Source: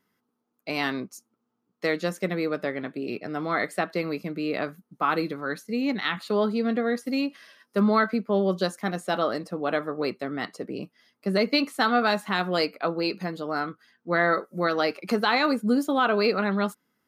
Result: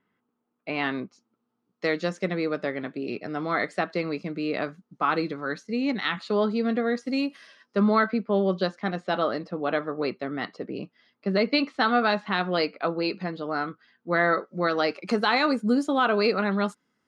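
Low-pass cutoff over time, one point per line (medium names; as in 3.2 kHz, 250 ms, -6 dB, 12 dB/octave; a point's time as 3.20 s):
low-pass 24 dB/octave
0.70 s 3.2 kHz
1.96 s 6.7 kHz
7.05 s 6.7 kHz
7.26 s 12 kHz
7.89 s 4.6 kHz
14.44 s 4.6 kHz
15.18 s 8.5 kHz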